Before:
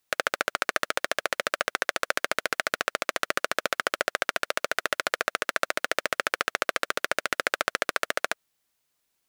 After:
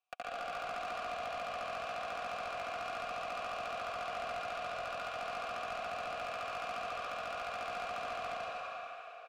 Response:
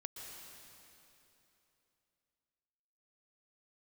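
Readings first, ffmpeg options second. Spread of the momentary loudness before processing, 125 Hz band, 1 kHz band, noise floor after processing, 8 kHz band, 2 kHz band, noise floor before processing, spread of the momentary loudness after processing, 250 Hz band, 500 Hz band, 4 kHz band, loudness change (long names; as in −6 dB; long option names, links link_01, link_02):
2 LU, −6.0 dB, −6.5 dB, −48 dBFS, −21.0 dB, −16.0 dB, −77 dBFS, 1 LU, −13.0 dB, −8.5 dB, −14.5 dB, −11.5 dB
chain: -filter_complex "[0:a]asplit=3[link_01][link_02][link_03];[link_01]bandpass=frequency=730:width_type=q:width=8,volume=0dB[link_04];[link_02]bandpass=frequency=1090:width_type=q:width=8,volume=-6dB[link_05];[link_03]bandpass=frequency=2440:width_type=q:width=8,volume=-9dB[link_06];[link_04][link_05][link_06]amix=inputs=3:normalize=0,aecho=1:1:4.2:0.39,aecho=1:1:87.46|119.5:0.501|0.447[link_07];[1:a]atrim=start_sample=2205[link_08];[link_07][link_08]afir=irnorm=-1:irlink=0,asplit=2[link_09][link_10];[link_10]highpass=frequency=720:poles=1,volume=23dB,asoftclip=type=tanh:threshold=-24.5dB[link_11];[link_09][link_11]amix=inputs=2:normalize=0,lowpass=frequency=7600:poles=1,volume=-6dB,volume=-7.5dB"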